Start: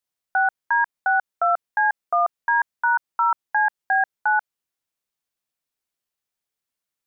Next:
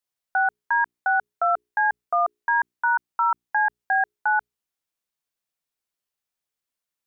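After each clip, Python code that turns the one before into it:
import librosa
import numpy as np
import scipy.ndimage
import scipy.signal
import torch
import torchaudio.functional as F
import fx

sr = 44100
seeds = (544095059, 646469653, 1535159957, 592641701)

y = fx.hum_notches(x, sr, base_hz=60, count=7)
y = F.gain(torch.from_numpy(y), -1.5).numpy()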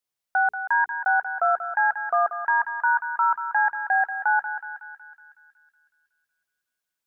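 y = fx.echo_thinned(x, sr, ms=185, feedback_pct=72, hz=1100.0, wet_db=-7.0)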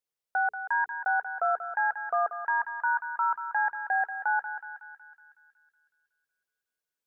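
y = fx.peak_eq(x, sr, hz=460.0, db=7.5, octaves=0.52)
y = F.gain(torch.from_numpy(y), -6.0).numpy()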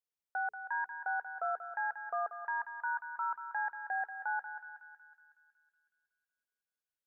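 y = x + 10.0 ** (-23.0 / 20.0) * np.pad(x, (int(294 * sr / 1000.0), 0))[:len(x)]
y = F.gain(torch.from_numpy(y), -8.5).numpy()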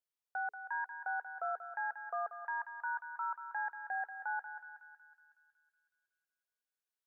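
y = scipy.signal.sosfilt(scipy.signal.butter(4, 370.0, 'highpass', fs=sr, output='sos'), x)
y = F.gain(torch.from_numpy(y), -2.5).numpy()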